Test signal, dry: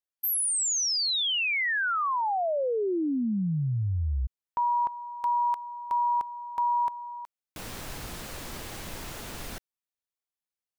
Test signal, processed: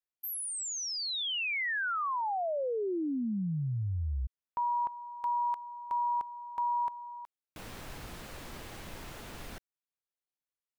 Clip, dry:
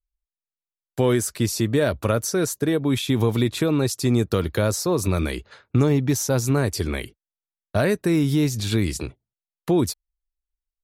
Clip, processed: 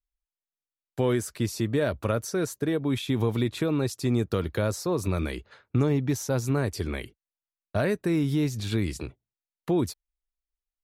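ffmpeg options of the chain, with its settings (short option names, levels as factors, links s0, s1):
-af "bass=f=250:g=0,treble=f=4000:g=-5,volume=0.562"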